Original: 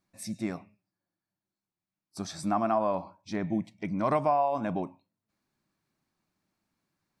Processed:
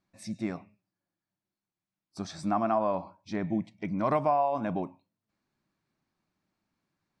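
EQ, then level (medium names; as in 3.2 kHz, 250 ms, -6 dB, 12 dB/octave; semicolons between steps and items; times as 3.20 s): distance through air 66 m; 0.0 dB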